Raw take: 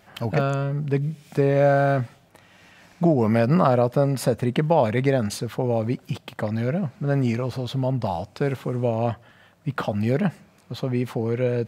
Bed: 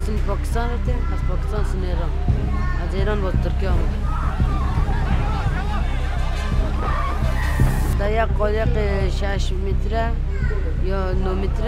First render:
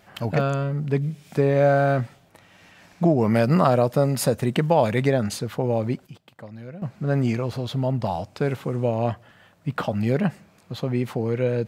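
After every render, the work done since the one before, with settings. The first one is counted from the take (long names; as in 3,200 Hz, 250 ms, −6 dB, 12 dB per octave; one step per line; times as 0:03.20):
0:03.35–0:05.08: high-shelf EQ 4,500 Hz +7.5 dB
0:05.69–0:07.20: duck −14 dB, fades 0.38 s logarithmic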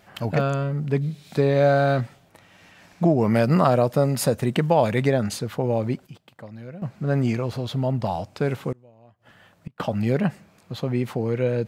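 0:01.01–0:02.01: parametric band 4,000 Hz +11 dB 0.35 octaves
0:08.72–0:09.80: gate with flip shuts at −22 dBFS, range −29 dB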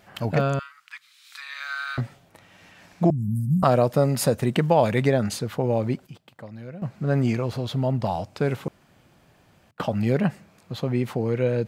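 0:00.59–0:01.98: elliptic high-pass filter 1,200 Hz, stop band 60 dB
0:03.10–0:03.63: inverse Chebyshev band-stop filter 440–4,000 Hz, stop band 50 dB
0:08.68–0:09.71: fill with room tone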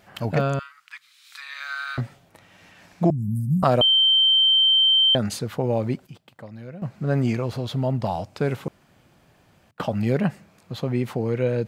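0:03.81–0:05.15: beep over 3,120 Hz −14 dBFS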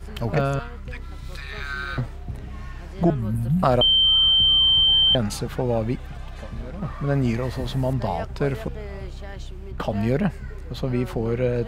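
mix in bed −14 dB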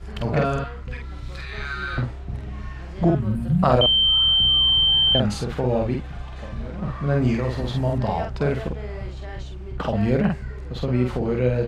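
high-frequency loss of the air 55 metres
double-tracking delay 48 ms −3 dB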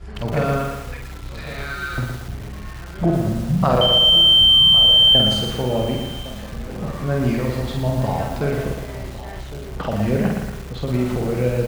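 slap from a distant wall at 190 metres, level −14 dB
feedback echo at a low word length 116 ms, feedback 55%, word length 6 bits, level −4.5 dB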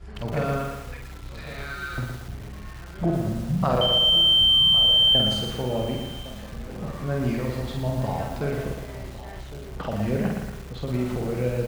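level −5.5 dB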